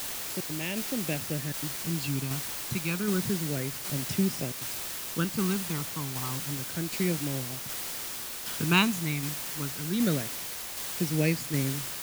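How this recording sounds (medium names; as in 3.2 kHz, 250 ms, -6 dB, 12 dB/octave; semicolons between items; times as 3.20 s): phasing stages 12, 0.3 Hz, lowest notch 520–1400 Hz; a quantiser's noise floor 6-bit, dither triangular; tremolo saw down 1.3 Hz, depth 35%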